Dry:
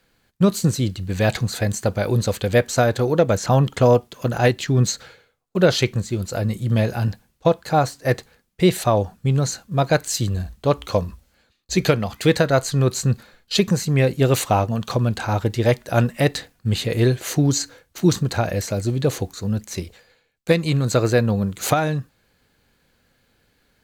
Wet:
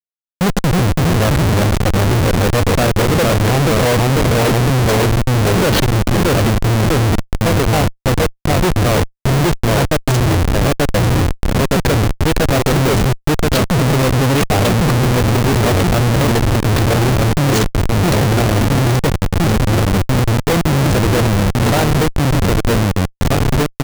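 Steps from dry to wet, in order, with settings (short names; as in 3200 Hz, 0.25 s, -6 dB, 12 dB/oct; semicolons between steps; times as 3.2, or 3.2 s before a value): echo 1.172 s -24 dB; echoes that change speed 0.293 s, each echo -1 st, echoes 3; Schmitt trigger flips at -19 dBFS; gain +5.5 dB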